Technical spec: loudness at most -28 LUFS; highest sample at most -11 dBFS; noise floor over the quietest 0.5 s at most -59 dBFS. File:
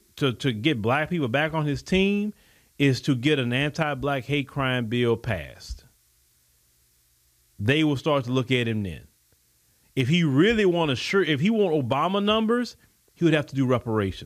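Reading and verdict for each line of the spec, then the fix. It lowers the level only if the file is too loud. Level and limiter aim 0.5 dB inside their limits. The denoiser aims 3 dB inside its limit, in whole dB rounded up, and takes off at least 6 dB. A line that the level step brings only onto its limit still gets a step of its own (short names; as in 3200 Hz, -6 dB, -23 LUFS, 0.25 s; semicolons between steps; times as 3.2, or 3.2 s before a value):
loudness -24.0 LUFS: fail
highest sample -9.5 dBFS: fail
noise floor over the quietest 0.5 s -64 dBFS: OK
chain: gain -4.5 dB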